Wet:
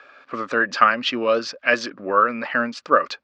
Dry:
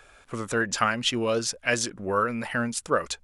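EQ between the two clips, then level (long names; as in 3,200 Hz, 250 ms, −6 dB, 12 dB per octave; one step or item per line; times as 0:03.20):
high-frequency loss of the air 70 metres
loudspeaker in its box 240–5,400 Hz, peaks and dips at 270 Hz +8 dB, 570 Hz +7 dB, 1,200 Hz +10 dB, 1,700 Hz +6 dB, 2,500 Hz +5 dB, 4,600 Hz +6 dB
+1.0 dB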